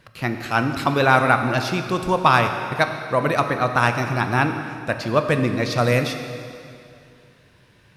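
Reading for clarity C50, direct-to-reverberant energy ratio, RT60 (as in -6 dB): 7.0 dB, 6.0 dB, 2.5 s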